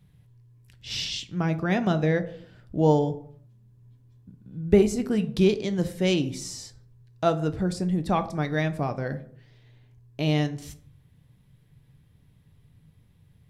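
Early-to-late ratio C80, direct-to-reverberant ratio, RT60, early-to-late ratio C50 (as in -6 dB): 18.5 dB, 9.0 dB, 0.65 s, 15.0 dB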